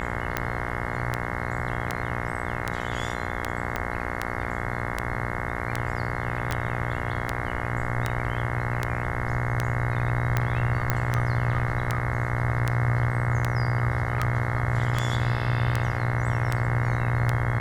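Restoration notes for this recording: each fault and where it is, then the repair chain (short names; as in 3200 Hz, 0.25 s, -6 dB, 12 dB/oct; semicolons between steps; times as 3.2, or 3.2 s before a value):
buzz 60 Hz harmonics 36 -31 dBFS
tick 78 rpm -10 dBFS
3.76 pop -13 dBFS
6.51 pop -13 dBFS
10.9 pop -8 dBFS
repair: de-click; de-hum 60 Hz, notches 36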